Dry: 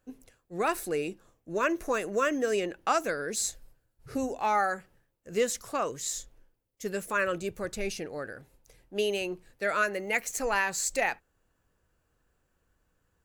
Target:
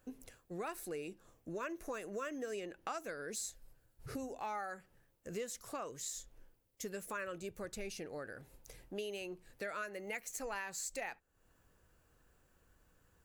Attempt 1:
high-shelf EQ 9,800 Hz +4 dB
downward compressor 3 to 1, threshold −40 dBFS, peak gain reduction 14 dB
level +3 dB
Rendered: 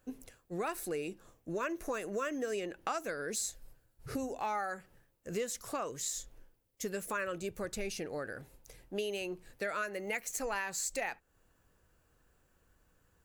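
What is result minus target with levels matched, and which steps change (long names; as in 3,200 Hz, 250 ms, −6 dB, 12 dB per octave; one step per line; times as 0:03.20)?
downward compressor: peak gain reduction −5.5 dB
change: downward compressor 3 to 1, threshold −48.5 dBFS, peak gain reduction 19.5 dB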